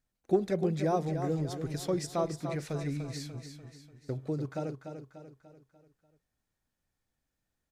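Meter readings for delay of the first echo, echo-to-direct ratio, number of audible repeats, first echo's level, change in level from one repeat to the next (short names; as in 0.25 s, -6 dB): 0.294 s, -7.0 dB, 5, -8.0 dB, -6.5 dB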